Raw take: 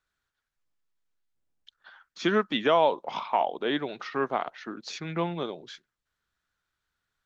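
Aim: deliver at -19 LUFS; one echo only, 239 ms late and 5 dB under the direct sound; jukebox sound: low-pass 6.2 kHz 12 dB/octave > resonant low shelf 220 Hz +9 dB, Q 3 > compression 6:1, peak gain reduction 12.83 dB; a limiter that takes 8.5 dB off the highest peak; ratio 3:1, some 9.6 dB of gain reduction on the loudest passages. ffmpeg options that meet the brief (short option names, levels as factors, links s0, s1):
-af "acompressor=threshold=0.0282:ratio=3,alimiter=level_in=1.19:limit=0.0631:level=0:latency=1,volume=0.841,lowpass=6200,lowshelf=f=220:t=q:w=3:g=9,aecho=1:1:239:0.562,acompressor=threshold=0.0224:ratio=6,volume=8.91"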